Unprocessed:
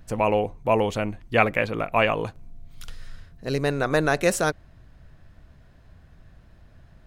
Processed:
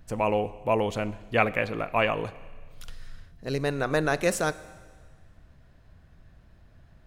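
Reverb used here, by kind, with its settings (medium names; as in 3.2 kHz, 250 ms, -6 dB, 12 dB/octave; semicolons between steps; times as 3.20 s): Schroeder reverb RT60 1.6 s, combs from 30 ms, DRR 16.5 dB; trim -3.5 dB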